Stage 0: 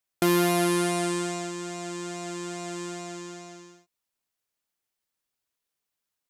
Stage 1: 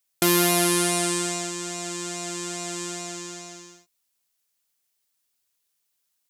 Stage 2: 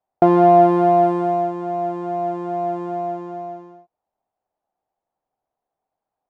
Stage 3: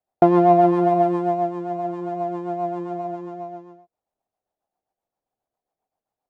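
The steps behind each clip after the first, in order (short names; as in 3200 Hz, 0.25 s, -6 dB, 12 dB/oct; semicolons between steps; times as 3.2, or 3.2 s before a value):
high shelf 2800 Hz +11 dB
synth low-pass 750 Hz, resonance Q 5.1; gain +5.5 dB
rotary speaker horn 7.5 Hz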